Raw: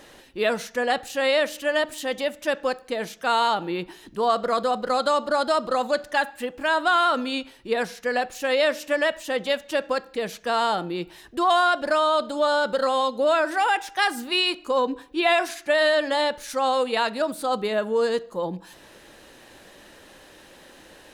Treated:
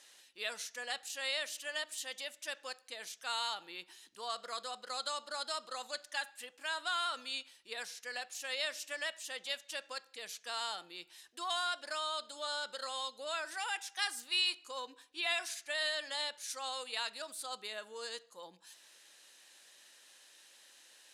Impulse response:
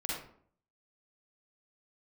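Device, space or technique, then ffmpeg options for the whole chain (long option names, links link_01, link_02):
piezo pickup straight into a mixer: -af "lowpass=8400,aderivative,volume=-1.5dB"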